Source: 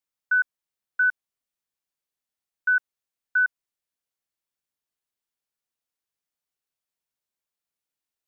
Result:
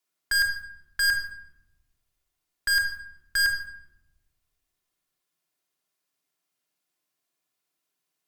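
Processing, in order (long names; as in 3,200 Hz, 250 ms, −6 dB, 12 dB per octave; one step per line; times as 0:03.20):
frequency shifter +120 Hz
in parallel at −6.5 dB: log-companded quantiser 2 bits
on the sum: tube saturation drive 26 dB, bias 0.25
rectangular room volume 3,300 cubic metres, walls furnished, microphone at 3.2 metres
level +5.5 dB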